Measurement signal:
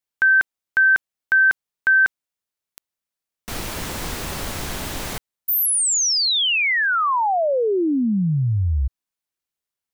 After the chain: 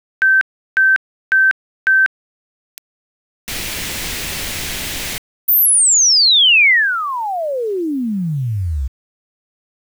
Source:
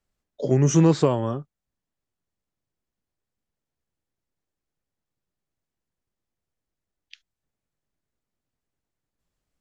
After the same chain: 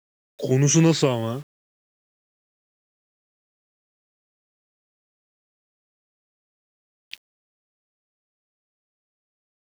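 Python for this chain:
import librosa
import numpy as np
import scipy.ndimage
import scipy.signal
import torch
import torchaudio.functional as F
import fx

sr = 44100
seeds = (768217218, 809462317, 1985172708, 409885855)

y = fx.high_shelf_res(x, sr, hz=1600.0, db=7.5, q=1.5)
y = fx.quant_dither(y, sr, seeds[0], bits=8, dither='none')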